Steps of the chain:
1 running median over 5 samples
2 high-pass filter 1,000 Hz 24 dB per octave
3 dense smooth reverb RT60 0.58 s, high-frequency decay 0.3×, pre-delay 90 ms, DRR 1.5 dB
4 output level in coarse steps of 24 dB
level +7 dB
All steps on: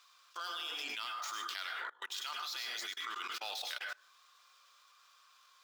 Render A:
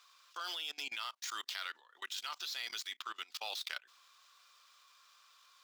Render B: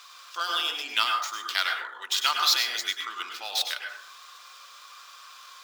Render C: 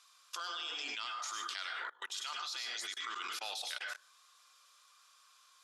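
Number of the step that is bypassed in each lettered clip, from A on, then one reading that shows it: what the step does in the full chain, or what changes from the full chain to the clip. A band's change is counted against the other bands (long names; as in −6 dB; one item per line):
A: 3, change in crest factor +3.5 dB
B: 4, change in momentary loudness spread +20 LU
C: 1, 8 kHz band +3.5 dB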